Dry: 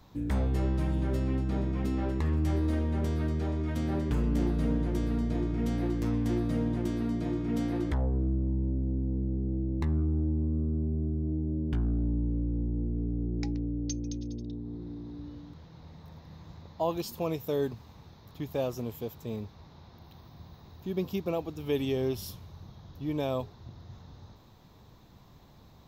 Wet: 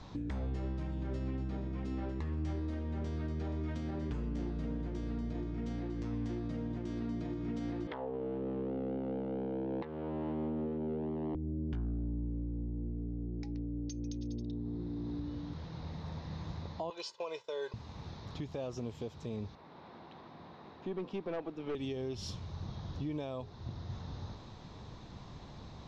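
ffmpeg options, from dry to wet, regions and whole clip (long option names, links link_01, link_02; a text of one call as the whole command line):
ffmpeg -i in.wav -filter_complex "[0:a]asettb=1/sr,asplit=3[link_01][link_02][link_03];[link_01]atrim=end=7.874[link_04];[link_02]atrim=start=7.87:end=11.35,asetpts=PTS-STARTPTS,afade=type=in:duration=0.004:curve=qsin,afade=type=out:start_time=3.476:duration=0.004:curve=qsin,asoftclip=type=hard:threshold=-25dB,highpass=310,equalizer=frequency=320:width_type=q:width=4:gain=-7,equalizer=frequency=460:width_type=q:width=4:gain=8,equalizer=frequency=890:width_type=q:width=4:gain=6,equalizer=frequency=3000:width_type=q:width=4:gain=5,lowpass=frequency=4000:width=0.5412,lowpass=frequency=4000:width=1.3066[link_05];[link_03]atrim=start=11.346[link_06];[link_04][link_05]acrossfade=duration=0.004:curve1=hsin:curve2=qsin[link_07];[link_07][link_06]acrossfade=duration=0.004:curve1=qsin:curve2=hsin,asettb=1/sr,asplit=3[link_08][link_09][link_10];[link_08]atrim=end=16.904[link_11];[link_09]atrim=start=16.9:end=17.74,asetpts=PTS-STARTPTS,afade=type=in:duration=0.004:curve=qsin,afade=type=out:start_time=0.836:duration=0.004:curve=qsin,agate=range=-33dB:threshold=-37dB:ratio=3:release=100:detection=peak,highpass=660,lowpass=6800,aecho=1:1:2:0.81,atrim=end_sample=37044[link_12];[link_10]atrim=start=17.736[link_13];[link_11][link_12]acrossfade=duration=0.004:curve1=hsin:curve2=qsin[link_14];[link_14][link_13]acrossfade=duration=0.004:curve1=qsin:curve2=hsin,asettb=1/sr,asplit=3[link_15][link_16][link_17];[link_15]atrim=end=19.554[link_18];[link_16]atrim=start=19.55:end=21.75,asetpts=PTS-STARTPTS,afade=type=in:duration=0.004:curve=qsin,afade=type=out:start_time=2.196:duration=0.004:curve=qsin,acrossover=split=200 3100:gain=0.0631 1 0.158[link_19][link_20][link_21];[link_19][link_20][link_21]amix=inputs=3:normalize=0,aeval=exprs='(tanh(31.6*val(0)+0.3)-tanh(0.3))/31.6':channel_layout=same[link_22];[link_17]atrim=start=21.746[link_23];[link_18][link_22]acrossfade=duration=0.004:curve1=hsin:curve2=qsin[link_24];[link_24][link_23]acrossfade=duration=0.004:curve1=qsin:curve2=hsin,acompressor=threshold=-32dB:ratio=6,lowpass=frequency=6600:width=0.5412,lowpass=frequency=6600:width=1.3066,alimiter=level_in=12.5dB:limit=-24dB:level=0:latency=1:release=475,volume=-12.5dB,volume=6.5dB" out.wav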